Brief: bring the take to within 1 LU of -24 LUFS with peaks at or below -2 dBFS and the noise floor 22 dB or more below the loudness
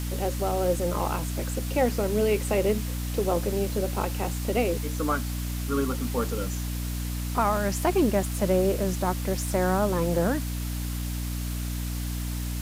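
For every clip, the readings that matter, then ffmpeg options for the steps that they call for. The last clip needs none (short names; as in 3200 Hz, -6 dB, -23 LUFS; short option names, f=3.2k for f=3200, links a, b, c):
hum 60 Hz; harmonics up to 300 Hz; hum level -28 dBFS; noise floor -31 dBFS; noise floor target -50 dBFS; loudness -27.5 LUFS; peak -11.0 dBFS; loudness target -24.0 LUFS
-> -af "bandreject=f=60:t=h:w=4,bandreject=f=120:t=h:w=4,bandreject=f=180:t=h:w=4,bandreject=f=240:t=h:w=4,bandreject=f=300:t=h:w=4"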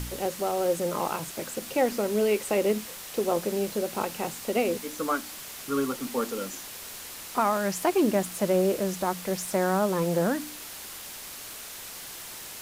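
hum none; noise floor -41 dBFS; noise floor target -51 dBFS
-> -af "afftdn=nr=10:nf=-41"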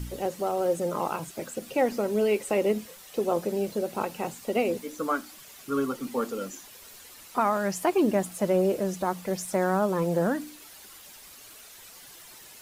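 noise floor -49 dBFS; noise floor target -50 dBFS
-> -af "afftdn=nr=6:nf=-49"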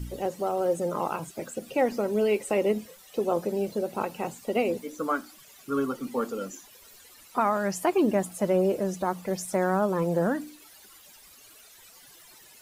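noise floor -53 dBFS; loudness -28.0 LUFS; peak -13.0 dBFS; loudness target -24.0 LUFS
-> -af "volume=4dB"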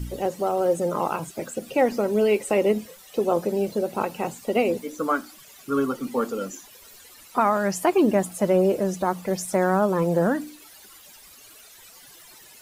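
loudness -24.0 LUFS; peak -9.0 dBFS; noise floor -49 dBFS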